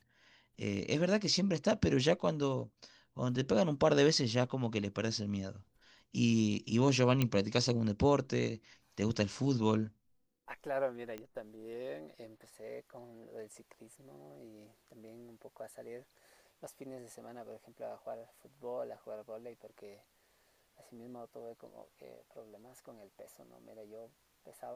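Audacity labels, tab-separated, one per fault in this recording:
7.220000	7.220000	pop -16 dBFS
11.180000	11.180000	pop -29 dBFS

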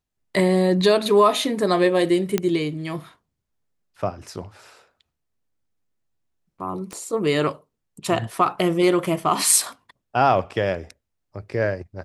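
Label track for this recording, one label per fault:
2.380000	2.380000	pop -7 dBFS
6.930000	6.930000	pop -19 dBFS

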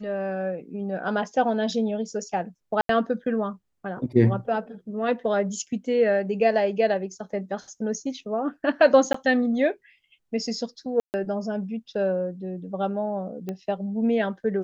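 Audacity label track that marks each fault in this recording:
2.810000	2.890000	dropout 83 ms
9.130000	9.140000	dropout 14 ms
11.000000	11.140000	dropout 139 ms
13.490000	13.490000	pop -19 dBFS

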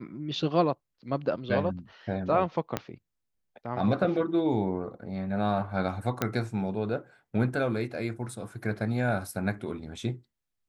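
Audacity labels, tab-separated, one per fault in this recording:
2.770000	2.770000	pop -13 dBFS
6.220000	6.220000	pop -11 dBFS

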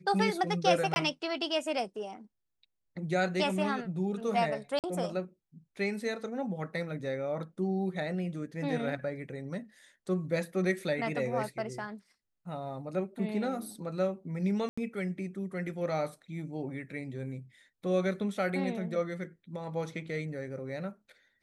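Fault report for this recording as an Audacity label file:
0.940000	0.960000	dropout 21 ms
4.790000	4.840000	dropout 48 ms
14.690000	14.780000	dropout 85 ms

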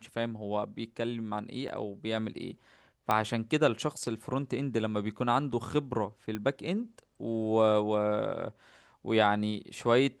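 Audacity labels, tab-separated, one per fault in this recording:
1.680000	1.690000	dropout 5.6 ms
3.110000	3.110000	pop -14 dBFS
6.350000	6.350000	pop -21 dBFS

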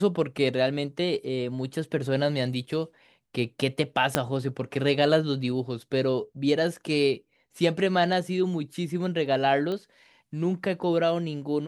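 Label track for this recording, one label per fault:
4.150000	4.150000	pop -6 dBFS
9.720000	9.720000	pop -21 dBFS

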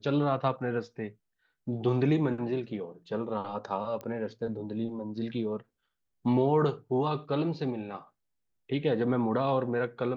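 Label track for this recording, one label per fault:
4.010000	4.010000	pop -25 dBFS

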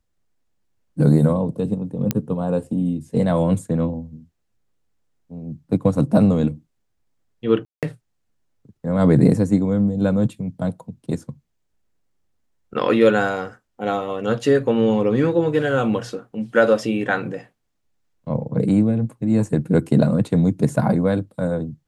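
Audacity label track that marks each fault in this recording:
2.110000	2.110000	pop -6 dBFS
7.650000	7.830000	dropout 177 ms

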